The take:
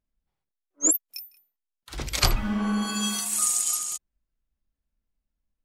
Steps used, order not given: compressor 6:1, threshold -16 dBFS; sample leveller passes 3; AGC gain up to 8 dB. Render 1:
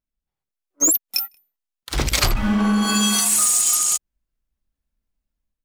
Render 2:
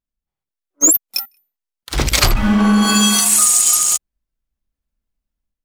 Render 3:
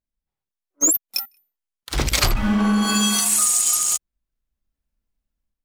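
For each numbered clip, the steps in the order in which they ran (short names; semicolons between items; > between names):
AGC > sample leveller > compressor; sample leveller > compressor > AGC; sample leveller > AGC > compressor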